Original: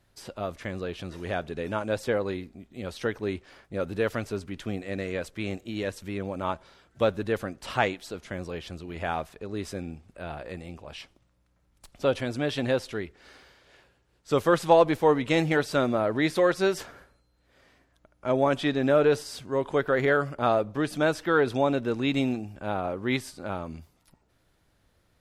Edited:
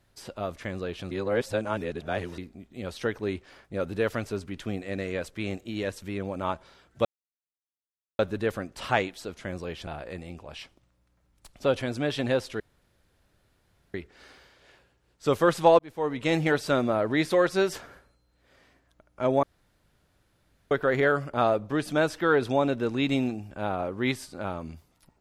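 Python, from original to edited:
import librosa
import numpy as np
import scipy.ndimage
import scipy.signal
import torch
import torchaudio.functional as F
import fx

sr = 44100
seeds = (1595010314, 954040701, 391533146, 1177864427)

y = fx.edit(x, sr, fx.reverse_span(start_s=1.11, length_s=1.27),
    fx.insert_silence(at_s=7.05, length_s=1.14),
    fx.cut(start_s=8.73, length_s=1.53),
    fx.insert_room_tone(at_s=12.99, length_s=1.34),
    fx.fade_in_span(start_s=14.84, length_s=0.61),
    fx.room_tone_fill(start_s=18.48, length_s=1.28), tone=tone)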